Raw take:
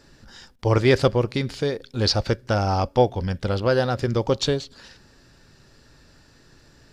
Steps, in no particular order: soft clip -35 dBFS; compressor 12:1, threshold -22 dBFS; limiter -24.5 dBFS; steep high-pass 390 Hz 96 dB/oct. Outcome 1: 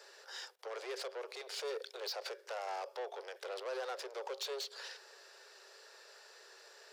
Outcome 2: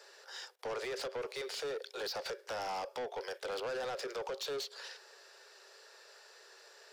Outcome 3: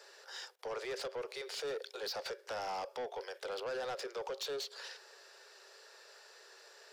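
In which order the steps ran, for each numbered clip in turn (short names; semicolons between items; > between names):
compressor > limiter > soft clip > steep high-pass; steep high-pass > compressor > limiter > soft clip; compressor > limiter > steep high-pass > soft clip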